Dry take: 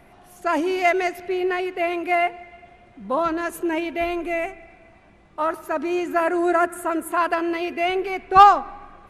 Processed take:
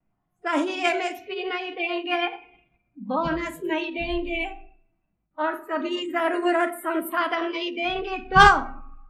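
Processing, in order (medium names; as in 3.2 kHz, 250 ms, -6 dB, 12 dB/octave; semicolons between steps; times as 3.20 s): resonant low shelf 290 Hz +7 dB, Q 1.5; gate with hold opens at -40 dBFS; spectral noise reduction 27 dB; on a send at -7 dB: reverberation RT60 0.45 s, pre-delay 6 ms; on the sum: level-controlled noise filter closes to 1.9 kHz, open at -20.5 dBFS; formant shift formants +2 st; trim -3 dB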